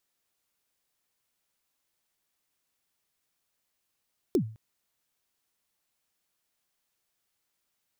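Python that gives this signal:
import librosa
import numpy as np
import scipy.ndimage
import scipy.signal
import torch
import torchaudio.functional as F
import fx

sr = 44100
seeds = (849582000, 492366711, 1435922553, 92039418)

y = fx.drum_kick(sr, seeds[0], length_s=0.21, level_db=-17.5, start_hz=420.0, end_hz=110.0, sweep_ms=87.0, decay_s=0.41, click=True)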